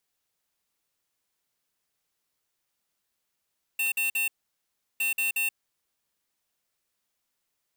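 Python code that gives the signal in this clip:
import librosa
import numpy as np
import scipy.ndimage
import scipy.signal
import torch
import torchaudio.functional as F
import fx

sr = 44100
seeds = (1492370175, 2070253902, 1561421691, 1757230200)

y = fx.beep_pattern(sr, wave='square', hz=2700.0, on_s=0.13, off_s=0.05, beeps=3, pause_s=0.72, groups=2, level_db=-26.5)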